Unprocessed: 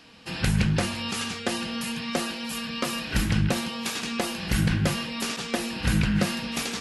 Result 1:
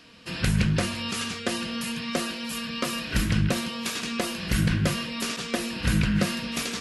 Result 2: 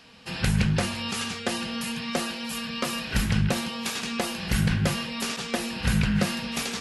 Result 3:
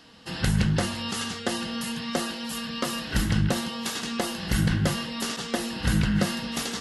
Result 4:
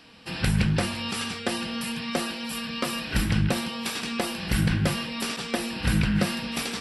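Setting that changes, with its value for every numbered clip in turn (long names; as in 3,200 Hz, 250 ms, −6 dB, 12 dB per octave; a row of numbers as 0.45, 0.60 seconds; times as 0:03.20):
notch filter, centre frequency: 820, 310, 2,400, 6,600 Hertz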